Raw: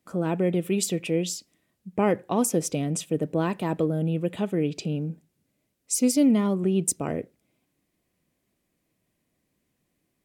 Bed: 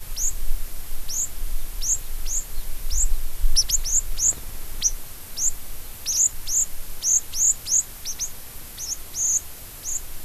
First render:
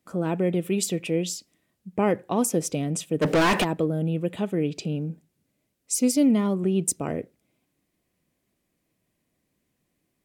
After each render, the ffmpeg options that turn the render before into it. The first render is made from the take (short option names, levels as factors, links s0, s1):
-filter_complex "[0:a]asplit=3[s0][s1][s2];[s0]afade=t=out:st=3.21:d=0.02[s3];[s1]asplit=2[s4][s5];[s5]highpass=f=720:p=1,volume=56.2,asoftclip=type=tanh:threshold=0.224[s6];[s4][s6]amix=inputs=2:normalize=0,lowpass=f=4700:p=1,volume=0.501,afade=t=in:st=3.21:d=0.02,afade=t=out:st=3.63:d=0.02[s7];[s2]afade=t=in:st=3.63:d=0.02[s8];[s3][s7][s8]amix=inputs=3:normalize=0"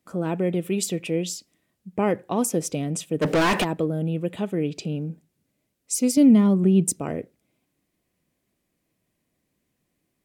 -filter_complex "[0:a]asettb=1/sr,asplit=3[s0][s1][s2];[s0]atrim=end=6.174[s3];[s1]atrim=start=6.17:end=6.99,asetpts=PTS-STARTPTS,afade=t=in:d=0.004:c=qsin,afade=t=out:st=0.816:d=0.004:c=qsin,equalizer=f=190:t=o:w=1.4:g=7[s4];[s2]atrim=start=6.986[s5];[s3][s4]acrossfade=d=0.004:c1=hsin:c2=qsin[s6];[s6][s5]acrossfade=d=0.004:c1=qsin:c2=hsin"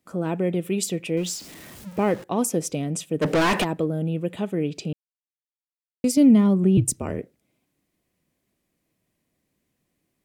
-filter_complex "[0:a]asettb=1/sr,asplit=3[s0][s1][s2];[s0]atrim=end=1.174[s3];[s1]atrim=start=1.17:end=2.24,asetpts=PTS-STARTPTS,afade=t=in:d=0.004:c=qsin,afade=t=out:st=1.066:d=0.004:c=qsin,aeval=exprs='val(0)+0.5*0.0133*sgn(val(0))':c=same[s4];[s2]atrim=start=2.236[s5];[s3][s4]acrossfade=d=0.004:c1=hsin:c2=qsin[s6];[s6][s5]acrossfade=d=0.004:c1=qsin:c2=hsin,asettb=1/sr,asplit=3[s7][s8][s9];[s7]atrim=end=6.774[s10];[s8]atrim=start=6.77:end=7.2,asetpts=PTS-STARTPTS,afade=t=in:d=0.004:c=qsin,afade=t=out:st=0.426:d=0.004:c=qsin,afreqshift=-52[s11];[s9]atrim=start=7.196[s12];[s10][s11]acrossfade=d=0.004:c1=hsin:c2=qsin[s13];[s13][s12]acrossfade=d=0.004:c1=qsin:c2=hsin,asplit=3[s14][s15][s16];[s14]atrim=end=4.93,asetpts=PTS-STARTPTS,afade=t=out:st=4.926:d=0.004:c=hsin[s17];[s15]atrim=start=4.93:end=6.04,asetpts=PTS-STARTPTS,volume=0[s18];[s16]atrim=start=6.04,asetpts=PTS-STARTPTS,afade=t=in:d=0.004:c=hsin[s19];[s17][s18][s19]concat=n=3:v=0:a=1"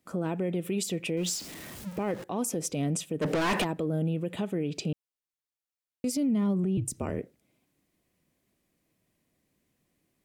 -af "acompressor=threshold=0.112:ratio=6,alimiter=limit=0.0841:level=0:latency=1:release=84"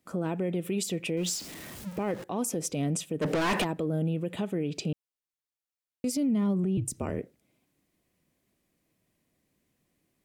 -af anull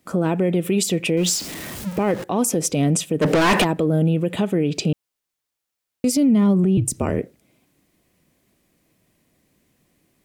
-af "volume=3.35"